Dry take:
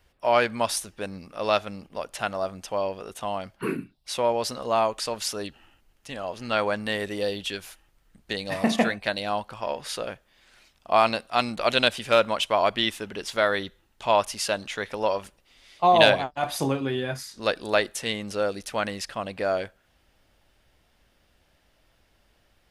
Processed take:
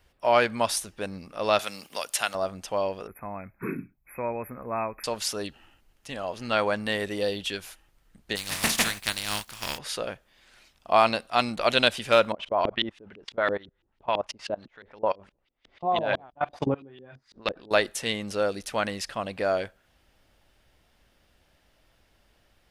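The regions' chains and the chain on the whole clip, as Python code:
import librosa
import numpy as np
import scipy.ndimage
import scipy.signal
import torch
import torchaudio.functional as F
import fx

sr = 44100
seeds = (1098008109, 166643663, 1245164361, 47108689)

y = fx.chain(x, sr, fx.tilt_eq(slope=4.0),
    fx.band_squash(depth_pct=40), at=(1.59, 2.35))
y = fx.chain(y, sr, fx.brickwall_bandstop(low_hz=2600.0, high_hz=11000.0),
    fx.peak_eq(hz=670.0, db=-8.5, octaves=2.0), at=(3.07, 5.04))
y = fx.spec_flatten(y, sr, power=0.39, at=(8.35, 9.77), fade=0.02)
y = fx.peak_eq(y, sr, hz=510.0, db=-9.5, octaves=2.1, at=(8.35, 9.77), fade=0.02)
y = fx.chain(y, sr, fx.high_shelf(hz=2700.0, db=11.0),
    fx.level_steps(step_db=24),
    fx.filter_lfo_lowpass(shape='saw_up', hz=6.0, low_hz=290.0, high_hz=3700.0, q=1.2), at=(12.32, 17.71))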